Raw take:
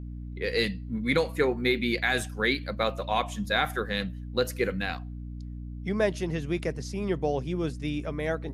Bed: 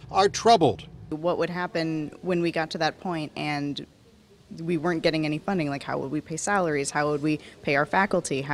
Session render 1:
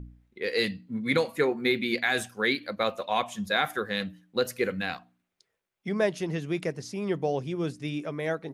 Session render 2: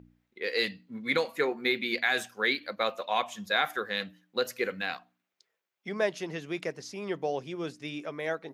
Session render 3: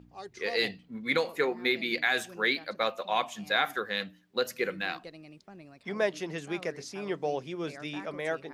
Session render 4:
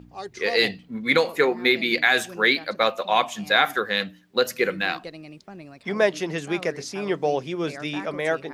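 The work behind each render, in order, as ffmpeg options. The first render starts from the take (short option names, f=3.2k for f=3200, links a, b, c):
-af "bandreject=f=60:t=h:w=4,bandreject=f=120:t=h:w=4,bandreject=f=180:t=h:w=4,bandreject=f=240:t=h:w=4,bandreject=f=300:t=h:w=4"
-af "highpass=f=490:p=1,equalizer=f=9.5k:t=o:w=0.44:g=-8.5"
-filter_complex "[1:a]volume=-23.5dB[a];[0:a][a]amix=inputs=2:normalize=0"
-af "volume=8dB"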